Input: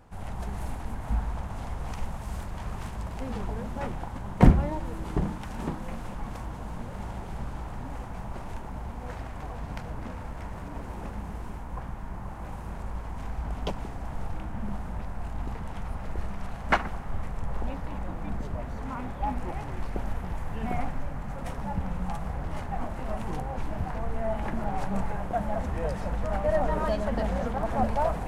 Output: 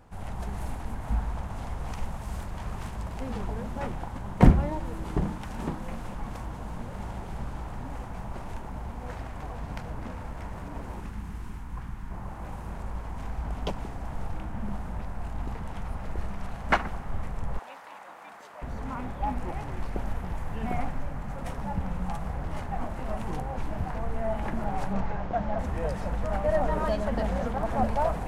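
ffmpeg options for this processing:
-filter_complex "[0:a]asettb=1/sr,asplit=3[s0][s1][s2];[s0]atrim=end=11.004[s3];[s1]atrim=start=11:end=12.11,asetpts=PTS-STARTPTS,afade=t=in:d=0.004:c=qsin,afade=t=out:st=1.106:d=0.004:c=qsin,equalizer=f=590:t=o:w=1.1:g=-12[s4];[s2]atrim=start=12.106[s5];[s3][s4]acrossfade=d=0.004:c1=hsin:c2=qsin[s6];[s6][s5]acrossfade=d=0.004:c1=qsin:c2=hsin,asettb=1/sr,asplit=3[s7][s8][s9];[s7]atrim=end=17.594[s10];[s8]atrim=start=17.59:end=18.62,asetpts=PTS-STARTPTS,afade=t=in:d=0.004:c=qsin,afade=t=out:st=1.026:d=0.004:c=qsin,highpass=830[s11];[s9]atrim=start=18.616[s12];[s10][s11]acrossfade=d=0.004:c1=hsin:c2=qsin[s13];[s13][s12]acrossfade=d=0.004:c1=qsin:c2=hsin,asettb=1/sr,asplit=3[s14][s15][s16];[s14]atrim=end=24.934[s17];[s15]atrim=start=24.93:end=25.59,asetpts=PTS-STARTPTS,afade=t=in:d=0.004:c=qsin,afade=t=out:st=0.656:d=0.004:c=qsin,lowpass=f=5900:w=0.5412,lowpass=f=5900:w=1.3066[s18];[s16]atrim=start=25.586[s19];[s17][s18]acrossfade=d=0.004:c1=hsin:c2=qsin[s20];[s20][s19]acrossfade=d=0.004:c1=qsin:c2=hsin"

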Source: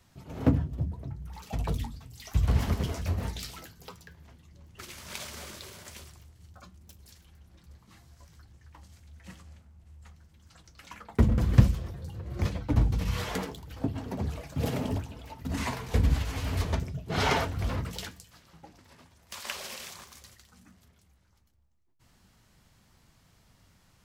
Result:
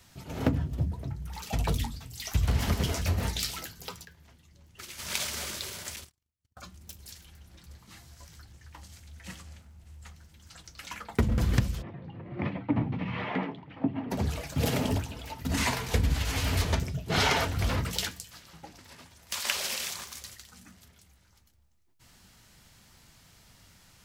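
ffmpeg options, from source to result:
-filter_complex "[0:a]asettb=1/sr,asplit=3[s0][s1][s2];[s0]atrim=end=5.964[s3];[s1]atrim=start=5.96:end=6.57,asetpts=PTS-STARTPTS,afade=t=in:d=0.004:c=qsin,afade=t=out:st=0.606:d=0.004:c=qsin,agate=range=0.00891:threshold=0.00447:ratio=16:release=100:detection=peak[s4];[s2]atrim=start=6.566[s5];[s3][s4]acrossfade=d=0.004:c1=hsin:c2=qsin[s6];[s6][s5]acrossfade=d=0.004:c1=qsin:c2=hsin,asplit=3[s7][s8][s9];[s7]afade=t=out:st=11.81:d=0.02[s10];[s8]highpass=f=130:w=0.5412,highpass=f=130:w=1.3066,equalizer=f=270:t=q:w=4:g=4,equalizer=f=470:t=q:w=4:g=-6,equalizer=f=1500:t=q:w=4:g=-9,lowpass=f=2300:w=0.5412,lowpass=f=2300:w=1.3066,afade=t=in:st=11.81:d=0.02,afade=t=out:st=14.1:d=0.02[s11];[s9]afade=t=in:st=14.1:d=0.02[s12];[s10][s11][s12]amix=inputs=3:normalize=0,asplit=3[s13][s14][s15];[s13]atrim=end=4.052[s16];[s14]atrim=start=4.048:end=4.992,asetpts=PTS-STARTPTS,volume=0.447[s17];[s15]atrim=start=4.988[s18];[s16][s17]acrossfade=d=0.004:c1=hsin:c2=hsin[s19];[s19][s18]acrossfade=d=0.004:c1=hsin:c2=hsin,tiltshelf=f=1500:g=-3.5,bandreject=f=1100:w=22,acompressor=threshold=0.0447:ratio=8,volume=2"

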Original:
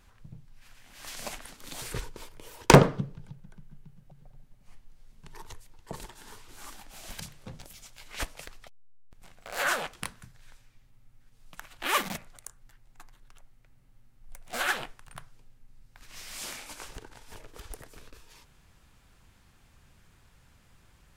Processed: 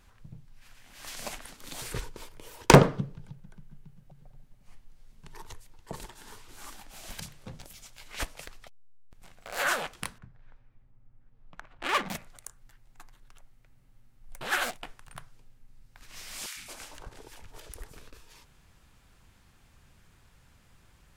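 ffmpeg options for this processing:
-filter_complex "[0:a]asettb=1/sr,asplit=3[s0][s1][s2];[s0]atrim=end=10.184[s3];[s1]atrim=start=10.18:end=12.09,asetpts=PTS-STARTPTS,afade=t=in:d=0.004:c=qsin,afade=t=out:st=1.906:d=0.004:c=qsin,adynamicsmooth=sensitivity=3.5:basefreq=1500[s4];[s2]atrim=start=12.086[s5];[s3][s4]acrossfade=d=0.004:c1=hsin:c2=qsin[s6];[s6][s5]acrossfade=d=0.004:c1=qsin:c2=hsin,asettb=1/sr,asplit=3[s7][s8][s9];[s7]atrim=end=16.464[s10];[s8]atrim=start=16.46:end=17.92,asetpts=PTS-STARTPTS,afade=t=in:d=0.004:c=qsin,afade=t=out:st=1.456:d=0.004:c=qsin,acrossover=split=230|1200[s11][s12][s13];[s11]adelay=100[s14];[s12]adelay=220[s15];[s14][s15][s13]amix=inputs=3:normalize=0,atrim=end_sample=64386[s16];[s9]atrim=start=17.916[s17];[s10][s16]acrossfade=d=0.004:c1=hsin:c2=qsin[s18];[s18][s17]acrossfade=d=0.004:c1=qsin:c2=hsin,asplit=3[s19][s20][s21];[s19]atrim=end=14.412[s22];[s20]atrim=start=14.408:end=14.832,asetpts=PTS-STARTPTS,areverse[s23];[s21]atrim=start=14.828[s24];[s22][s23]acrossfade=d=0.004:c1=hsin:c2=hsin[s25];[s25][s24]acrossfade=d=0.004:c1=hsin:c2=hsin"

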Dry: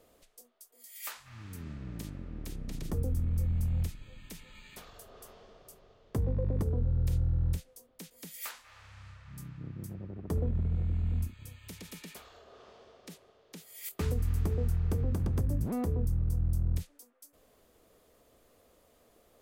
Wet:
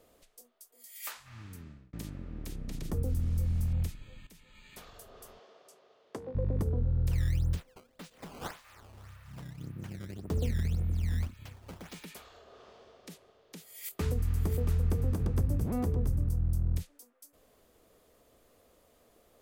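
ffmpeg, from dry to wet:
-filter_complex "[0:a]asettb=1/sr,asplit=3[s0][s1][s2];[s0]atrim=end=3.044[s3];[s1]atrim=start=3.04:end=3.73,asetpts=PTS-STARTPTS,afade=t=in:d=0.004:c=qsin,afade=t=out:st=0.686:d=0.004:c=qsin,acrusher=bits=8:mix=0:aa=0.5[s4];[s2]atrim=start=3.726[s5];[s3][s4]acrossfade=d=0.004:c1=hsin:c2=qsin[s6];[s6][s5]acrossfade=d=0.004:c1=qsin:c2=hsin,asettb=1/sr,asplit=3[s7][s8][s9];[s7]atrim=end=5.394[s10];[s8]atrim=start=5.39:end=6.35,asetpts=PTS-STARTPTS,afade=t=in:d=0.004:c=qsin,afade=t=out:st=0.956:d=0.004:c=qsin,highpass=370,lowpass=7900[s11];[s9]atrim=start=6.346[s12];[s10][s11]acrossfade=d=0.004:c1=hsin:c2=qsin[s13];[s13][s12]acrossfade=d=0.004:c1=qsin:c2=hsin,asettb=1/sr,asplit=3[s14][s15][s16];[s14]atrim=end=7.114[s17];[s15]atrim=start=7.11:end=12.06,asetpts=PTS-STARTPTS,afade=t=in:d=0.004:c=qsin,afade=t=out:st=4.946:d=0.004:c=qsin,acrusher=samples=14:mix=1:aa=0.000001:lfo=1:lforange=22.4:lforate=1.8[s18];[s16]atrim=start=12.056[s19];[s17][s18]acrossfade=d=0.004:c1=hsin:c2=qsin[s20];[s20][s19]acrossfade=d=0.004:c1=qsin:c2=hsin,asettb=1/sr,asplit=3[s21][s22][s23];[s21]atrim=end=13.694[s24];[s22]atrim=start=13.69:end=16.29,asetpts=PTS-STARTPTS,afade=t=in:d=0.004:c=qsin,afade=t=out:st=2.596:d=0.004:c=qsin,aecho=1:1:679:0.398,atrim=end_sample=114660[s25];[s23]atrim=start=16.286[s26];[s24][s25]acrossfade=d=0.004:c1=hsin:c2=qsin[s27];[s27][s26]acrossfade=d=0.004:c1=qsin:c2=hsin,asplit=3[s28][s29][s30];[s28]atrim=end=1.93,asetpts=PTS-STARTPTS,afade=t=out:st=1.39:d=0.54[s31];[s29]atrim=start=1.93:end=4.27,asetpts=PTS-STARTPTS,afade=t=in:d=0.004:c=hsin,afade=t=out:st=2.336:d=0.004:c=hsin:silence=0.211349[s32];[s30]atrim=start=4.27,asetpts=PTS-STARTPTS,afade=t=in:d=0.59:silence=0.211349[s33];[s31][s32][s33]concat=n=3:v=0:a=1"

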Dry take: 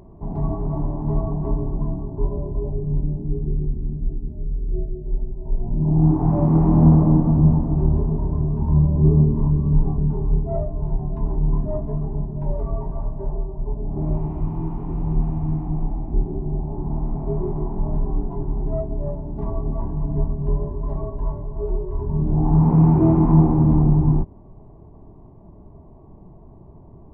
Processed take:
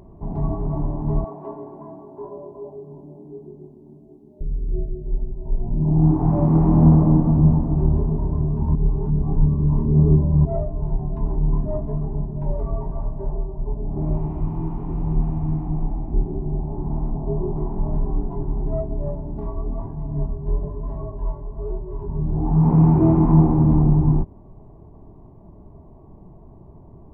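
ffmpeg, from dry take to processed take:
-filter_complex "[0:a]asettb=1/sr,asplit=3[s0][s1][s2];[s0]atrim=end=1.244[s3];[s1]atrim=start=1.24:end=4.41,asetpts=PTS-STARTPTS,afade=t=in:d=0.004:c=qsin,afade=t=out:st=3.166:d=0.004:c=qsin,highpass=430[s4];[s2]atrim=start=4.406[s5];[s3][s4]acrossfade=d=0.004:c1=hsin:c2=qsin[s6];[s6][s5]acrossfade=d=0.004:c1=qsin:c2=hsin,asettb=1/sr,asplit=3[s7][s8][s9];[s7]atrim=end=17.104[s10];[s8]atrim=start=17.1:end=17.57,asetpts=PTS-STARTPTS,afade=t=in:d=0.004:c=qsin,afade=t=out:st=0.466:d=0.004:c=qsin,lowpass=f=1100:w=0.5412,lowpass=f=1100:w=1.3066[s11];[s9]atrim=start=17.566[s12];[s10][s11]acrossfade=d=0.004:c1=hsin:c2=qsin[s13];[s13][s12]acrossfade=d=0.004:c1=qsin:c2=hsin,asplit=3[s14][s15][s16];[s14]afade=t=out:st=19.39:d=0.02[s17];[s15]flanger=delay=18:depth=7:speed=1.1,afade=t=in:st=19.39:d=0.02,afade=t=out:st=22.63:d=0.02[s18];[s16]afade=t=in:st=22.63:d=0.02[s19];[s17][s18][s19]amix=inputs=3:normalize=0,asplit=3[s20][s21][s22];[s20]atrim=end=8.752[s23];[s21]atrim=start=8.748:end=10.452,asetpts=PTS-STARTPTS,areverse[s24];[s22]atrim=start=10.448[s25];[s23][s24]acrossfade=d=0.004:c1=hsin:c2=hsin[s26];[s26][s25]acrossfade=d=0.004:c1=hsin:c2=hsin"

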